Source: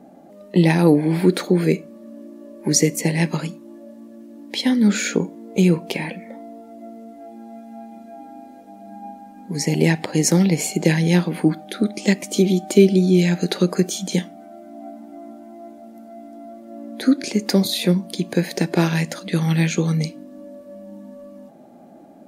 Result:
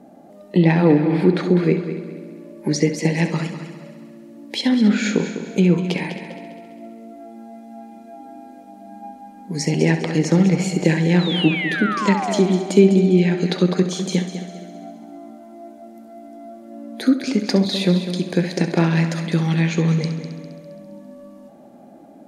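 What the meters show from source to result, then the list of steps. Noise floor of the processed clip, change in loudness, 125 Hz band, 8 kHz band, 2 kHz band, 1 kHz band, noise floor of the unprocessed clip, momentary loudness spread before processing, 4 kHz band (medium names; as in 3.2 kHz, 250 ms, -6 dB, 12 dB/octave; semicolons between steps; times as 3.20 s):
-44 dBFS, +0.5 dB, +1.0 dB, -7.5 dB, +2.0 dB, +3.5 dB, -44 dBFS, 23 LU, 0.0 dB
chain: painted sound fall, 11.19–12.40 s, 580–4200 Hz -25 dBFS; low-pass that closes with the level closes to 2.9 kHz, closed at -13 dBFS; multi-head delay 67 ms, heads first and third, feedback 57%, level -11.5 dB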